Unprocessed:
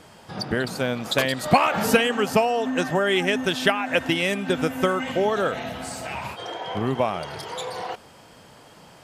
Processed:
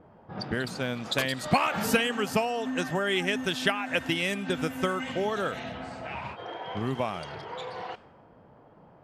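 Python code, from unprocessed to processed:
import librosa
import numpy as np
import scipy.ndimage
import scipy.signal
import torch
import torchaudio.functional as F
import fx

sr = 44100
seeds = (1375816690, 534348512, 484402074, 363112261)

y = fx.env_lowpass(x, sr, base_hz=810.0, full_db=-21.5)
y = fx.dynamic_eq(y, sr, hz=580.0, q=0.79, threshold_db=-32.0, ratio=4.0, max_db=-4)
y = F.gain(torch.from_numpy(y), -4.0).numpy()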